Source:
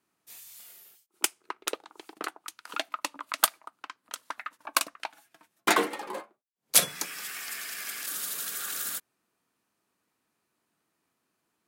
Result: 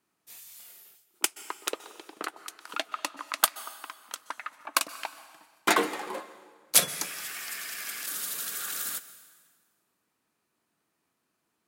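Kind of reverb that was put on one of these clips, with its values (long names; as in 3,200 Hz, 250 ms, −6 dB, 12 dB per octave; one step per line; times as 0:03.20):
dense smooth reverb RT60 1.6 s, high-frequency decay 0.9×, pre-delay 115 ms, DRR 15 dB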